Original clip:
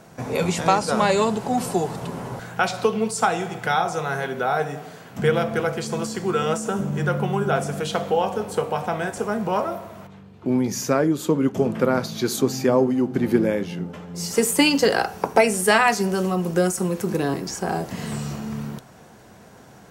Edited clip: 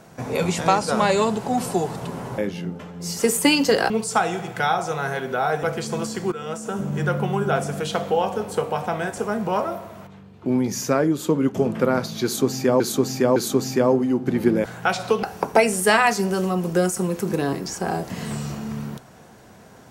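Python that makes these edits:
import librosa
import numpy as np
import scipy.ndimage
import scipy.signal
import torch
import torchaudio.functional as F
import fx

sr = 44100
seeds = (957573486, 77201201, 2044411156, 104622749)

y = fx.edit(x, sr, fx.swap(start_s=2.38, length_s=0.59, other_s=13.52, other_length_s=1.52),
    fx.cut(start_s=4.7, length_s=0.93),
    fx.fade_in_from(start_s=6.32, length_s=0.63, floor_db=-13.5),
    fx.repeat(start_s=12.24, length_s=0.56, count=3), tone=tone)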